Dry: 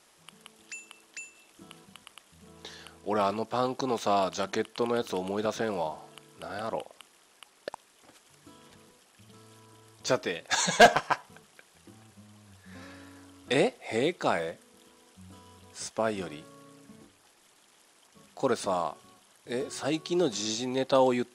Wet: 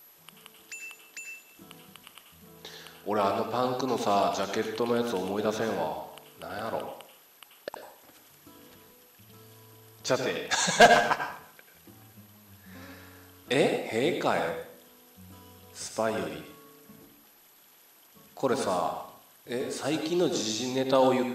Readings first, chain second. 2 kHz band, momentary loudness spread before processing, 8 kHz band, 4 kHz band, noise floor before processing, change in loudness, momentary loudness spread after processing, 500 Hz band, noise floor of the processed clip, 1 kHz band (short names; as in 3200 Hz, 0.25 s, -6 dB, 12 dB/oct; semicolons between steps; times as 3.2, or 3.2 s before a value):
+1.5 dB, 20 LU, +1.0 dB, +1.0 dB, -62 dBFS, +1.0 dB, 21 LU, +1.0 dB, -58 dBFS, +1.5 dB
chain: whine 12000 Hz -52 dBFS; plate-style reverb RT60 0.58 s, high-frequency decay 0.85×, pre-delay 75 ms, DRR 5 dB